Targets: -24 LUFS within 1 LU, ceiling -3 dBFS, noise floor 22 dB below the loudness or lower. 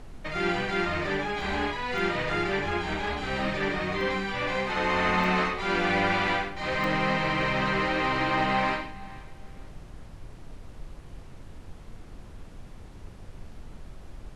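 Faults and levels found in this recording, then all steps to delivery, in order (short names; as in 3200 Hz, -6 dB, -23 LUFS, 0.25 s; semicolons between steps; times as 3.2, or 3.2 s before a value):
dropouts 5; longest dropout 1.4 ms; noise floor -46 dBFS; noise floor target -49 dBFS; loudness -27.0 LUFS; peak -13.0 dBFS; loudness target -24.0 LUFS
-> interpolate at 1.41/1.98/4.01/5.24/6.84, 1.4 ms; noise print and reduce 6 dB; gain +3 dB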